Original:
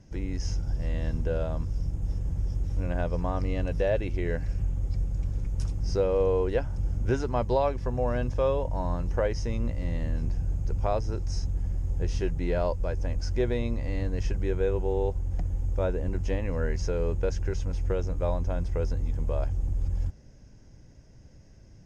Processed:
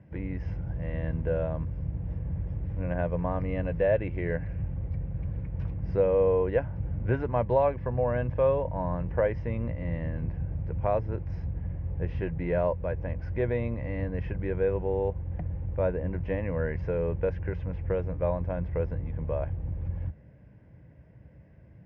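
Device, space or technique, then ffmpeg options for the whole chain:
bass cabinet: -af "highpass=frequency=66:width=0.5412,highpass=frequency=66:width=1.3066,equalizer=frequency=93:width_type=q:width=4:gain=-5,equalizer=frequency=250:width_type=q:width=4:gain=-7,equalizer=frequency=380:width_type=q:width=4:gain=-7,equalizer=frequency=790:width_type=q:width=4:gain=-5,equalizer=frequency=1300:width_type=q:width=4:gain=-8,lowpass=frequency=2200:width=0.5412,lowpass=frequency=2200:width=1.3066,volume=4dB"

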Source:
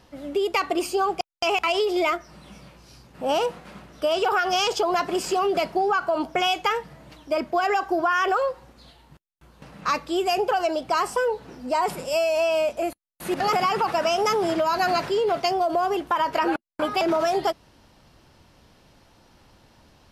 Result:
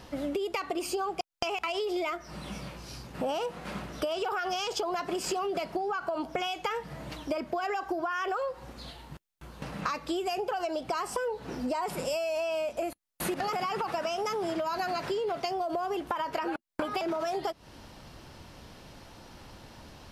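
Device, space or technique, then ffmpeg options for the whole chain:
serial compression, leveller first: -af "acompressor=threshold=-25dB:ratio=2.5,acompressor=threshold=-36dB:ratio=5,volume=6dB"

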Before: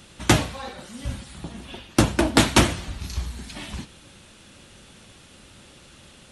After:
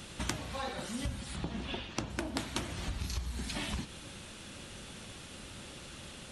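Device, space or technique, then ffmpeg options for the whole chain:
serial compression, leveller first: -filter_complex "[0:a]acompressor=threshold=-22dB:ratio=3,acompressor=threshold=-34dB:ratio=10,asettb=1/sr,asplit=3[link_01][link_02][link_03];[link_01]atrim=end=1.364[link_04];[link_02]atrim=start=1.36:end=2.1,asetpts=PTS-STARTPTS,afade=type=in:duration=0.004:curve=qsin,afade=type=out:start_time=0.736:duration=0.004:curve=qsin,lowpass=5600[link_05];[link_03]atrim=start=2.096[link_06];[link_04][link_05]acrossfade=duration=0.004:curve1=hsin:curve2=qsin[link_07];[link_07][link_06]acrossfade=duration=0.004:curve1=qsin:curve2=hsin,volume=1.5dB"

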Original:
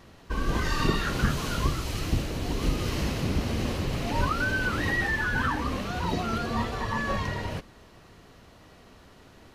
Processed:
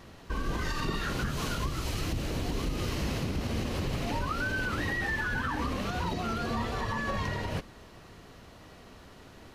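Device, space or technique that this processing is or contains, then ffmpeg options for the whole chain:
stacked limiters: -af "alimiter=limit=-17dB:level=0:latency=1:release=349,alimiter=limit=-24dB:level=0:latency=1:release=118,volume=1.5dB"

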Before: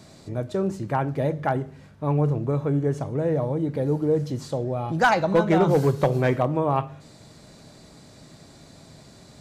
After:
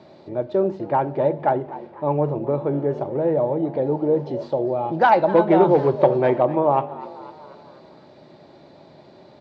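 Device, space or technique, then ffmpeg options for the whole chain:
frequency-shifting delay pedal into a guitar cabinet: -filter_complex "[0:a]asplit=6[link_01][link_02][link_03][link_04][link_05][link_06];[link_02]adelay=250,afreqshift=97,volume=-17.5dB[link_07];[link_03]adelay=500,afreqshift=194,volume=-22.7dB[link_08];[link_04]adelay=750,afreqshift=291,volume=-27.9dB[link_09];[link_05]adelay=1000,afreqshift=388,volume=-33.1dB[link_10];[link_06]adelay=1250,afreqshift=485,volume=-38.3dB[link_11];[link_01][link_07][link_08][link_09][link_10][link_11]amix=inputs=6:normalize=0,highpass=110,equalizer=frequency=110:width_type=q:width=4:gain=-4,equalizer=frequency=360:width_type=q:width=4:gain=10,equalizer=frequency=580:width_type=q:width=4:gain=10,equalizer=frequency=880:width_type=q:width=4:gain=10,lowpass=frequency=4100:width=0.5412,lowpass=frequency=4100:width=1.3066,volume=-2.5dB"

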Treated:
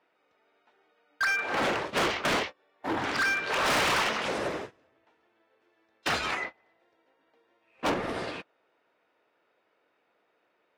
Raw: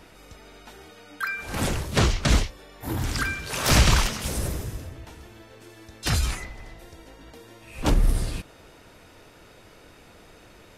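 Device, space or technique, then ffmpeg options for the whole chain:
walkie-talkie: -af "highpass=430,lowpass=2500,asoftclip=type=hard:threshold=-31dB,agate=range=-25dB:threshold=-42dB:ratio=16:detection=peak,volume=7.5dB"

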